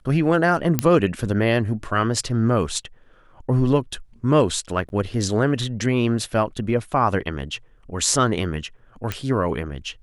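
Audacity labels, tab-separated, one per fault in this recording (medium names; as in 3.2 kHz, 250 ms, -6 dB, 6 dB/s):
0.790000	0.790000	pop -3 dBFS
4.890000	4.900000	dropout 11 ms
9.120000	9.120000	pop -10 dBFS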